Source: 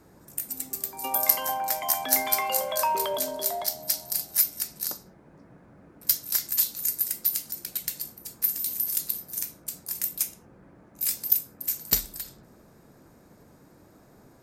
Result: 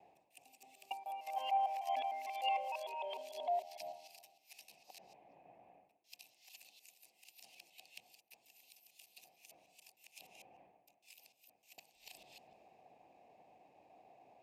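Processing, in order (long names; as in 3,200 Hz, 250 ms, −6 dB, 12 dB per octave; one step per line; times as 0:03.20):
reversed piece by piece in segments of 151 ms
reversed playback
downward compressor 6 to 1, threshold −41 dBFS, peak gain reduction 24.5 dB
reversed playback
pair of resonant band-passes 1,400 Hz, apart 1.8 octaves
multiband upward and downward expander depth 40%
level +9.5 dB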